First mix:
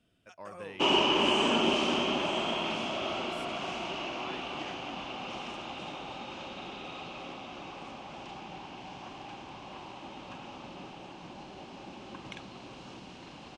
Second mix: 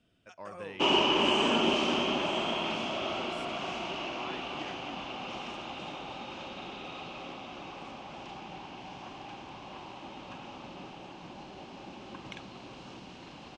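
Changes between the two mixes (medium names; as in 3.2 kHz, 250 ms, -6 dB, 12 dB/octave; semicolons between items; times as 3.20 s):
speech: send +9.0 dB; master: add low-pass 8.2 kHz 12 dB/octave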